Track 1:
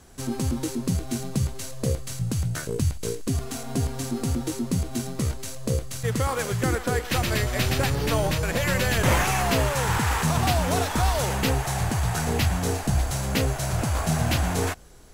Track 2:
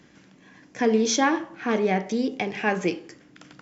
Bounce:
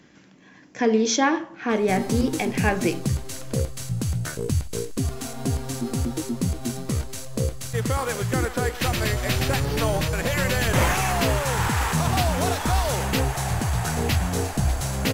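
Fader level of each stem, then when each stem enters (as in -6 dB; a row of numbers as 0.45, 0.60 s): +0.5, +1.0 dB; 1.70, 0.00 s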